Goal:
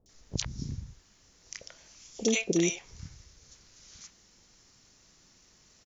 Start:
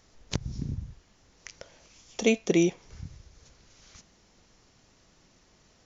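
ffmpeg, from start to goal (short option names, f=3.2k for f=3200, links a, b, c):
-filter_complex "[0:a]highshelf=f=2.4k:g=10.5,acrossover=split=670|3000[a][b][c];[c]adelay=60[d];[b]adelay=90[e];[a][e][d]amix=inputs=3:normalize=0,volume=-3.5dB"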